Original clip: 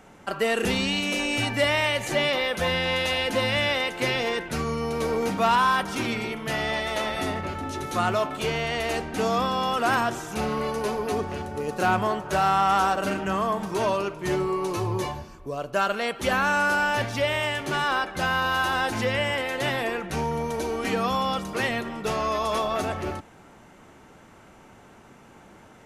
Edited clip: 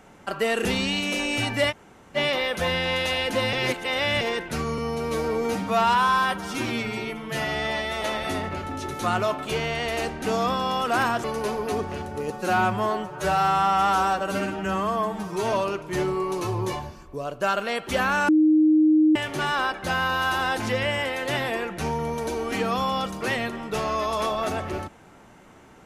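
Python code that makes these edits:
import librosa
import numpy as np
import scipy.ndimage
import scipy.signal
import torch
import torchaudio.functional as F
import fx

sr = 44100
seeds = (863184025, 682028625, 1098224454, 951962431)

y = fx.edit(x, sr, fx.room_tone_fill(start_s=1.71, length_s=0.45, crossfade_s=0.04),
    fx.reverse_span(start_s=3.53, length_s=0.68),
    fx.stretch_span(start_s=4.78, length_s=2.16, factor=1.5),
    fx.cut(start_s=10.16, length_s=0.48),
    fx.stretch_span(start_s=11.7, length_s=2.15, factor=1.5),
    fx.bleep(start_s=16.61, length_s=0.87, hz=310.0, db=-14.0), tone=tone)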